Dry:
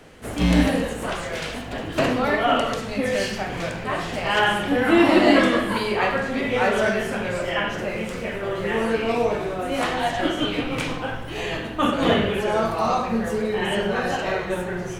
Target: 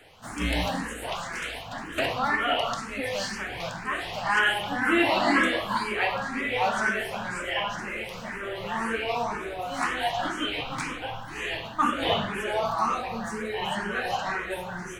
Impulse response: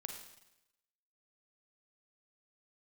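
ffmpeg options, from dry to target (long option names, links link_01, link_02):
-filter_complex "[0:a]lowshelf=frequency=670:width_type=q:width=1.5:gain=-6,asplit=2[link_01][link_02];[link_02]afreqshift=2[link_03];[link_01][link_03]amix=inputs=2:normalize=1"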